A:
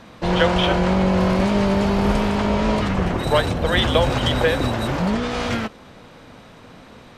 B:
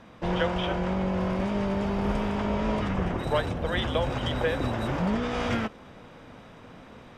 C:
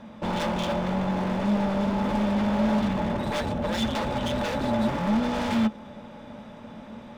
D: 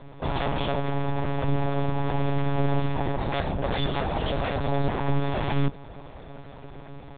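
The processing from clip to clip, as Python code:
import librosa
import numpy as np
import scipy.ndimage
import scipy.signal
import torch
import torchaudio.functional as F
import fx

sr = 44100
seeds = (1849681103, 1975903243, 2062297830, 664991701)

y1 = fx.high_shelf(x, sr, hz=4900.0, db=-8.0)
y1 = fx.notch(y1, sr, hz=4200.0, q=8.1)
y1 = fx.rider(y1, sr, range_db=10, speed_s=0.5)
y1 = F.gain(torch.from_numpy(y1), -8.0).numpy()
y2 = 10.0 ** (-26.0 / 20.0) * (np.abs((y1 / 10.0 ** (-26.0 / 20.0) + 3.0) % 4.0 - 2.0) - 1.0)
y2 = fx.small_body(y2, sr, hz=(220.0, 590.0, 850.0, 3500.0), ring_ms=95, db=14)
y3 = fx.lpc_monotone(y2, sr, seeds[0], pitch_hz=140.0, order=10)
y3 = F.gain(torch.from_numpy(y3), 1.0).numpy()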